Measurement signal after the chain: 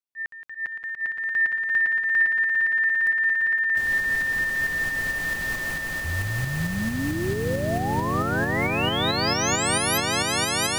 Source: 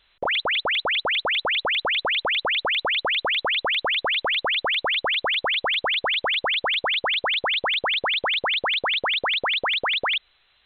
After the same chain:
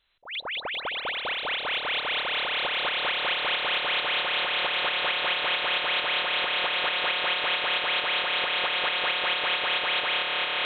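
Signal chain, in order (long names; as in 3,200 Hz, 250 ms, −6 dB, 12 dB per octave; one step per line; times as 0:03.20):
echo that builds up and dies away 172 ms, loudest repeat 8, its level −7 dB
shaped tremolo saw up 4.5 Hz, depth 35%
volume swells 159 ms
level −7 dB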